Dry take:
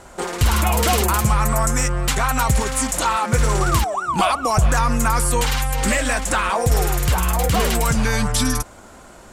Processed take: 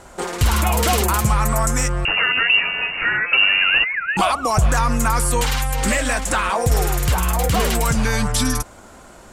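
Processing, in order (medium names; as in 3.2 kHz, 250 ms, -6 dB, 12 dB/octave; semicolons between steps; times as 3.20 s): 2.05–4.17 s: frequency inversion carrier 2.8 kHz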